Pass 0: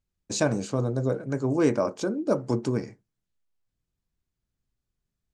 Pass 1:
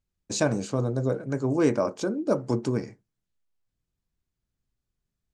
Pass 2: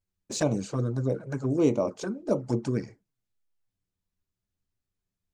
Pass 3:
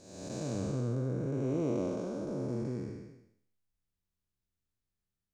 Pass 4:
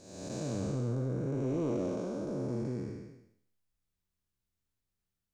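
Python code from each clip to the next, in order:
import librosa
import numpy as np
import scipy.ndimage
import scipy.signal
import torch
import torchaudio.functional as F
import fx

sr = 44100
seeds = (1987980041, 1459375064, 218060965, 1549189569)

y1 = x
y2 = fx.env_flanger(y1, sr, rest_ms=10.5, full_db=-20.0)
y3 = fx.spec_blur(y2, sr, span_ms=483.0)
y3 = y3 * 10.0 ** (-2.0 / 20.0)
y4 = 10.0 ** (-24.5 / 20.0) * np.tanh(y3 / 10.0 ** (-24.5 / 20.0))
y4 = y4 * 10.0 ** (1.0 / 20.0)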